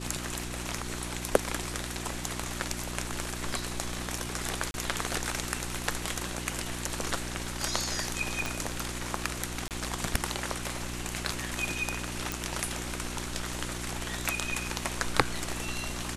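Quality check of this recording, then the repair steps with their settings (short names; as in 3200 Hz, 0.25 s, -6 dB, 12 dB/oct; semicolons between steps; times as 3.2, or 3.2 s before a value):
hum 60 Hz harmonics 6 -39 dBFS
4.71–4.74 gap 31 ms
8.46 pop
9.68–9.71 gap 28 ms
12.32 pop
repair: de-click; de-hum 60 Hz, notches 6; interpolate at 4.71, 31 ms; interpolate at 9.68, 28 ms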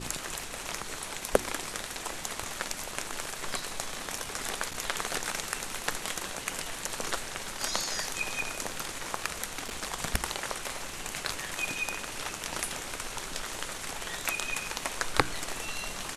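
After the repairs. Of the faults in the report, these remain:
8.46 pop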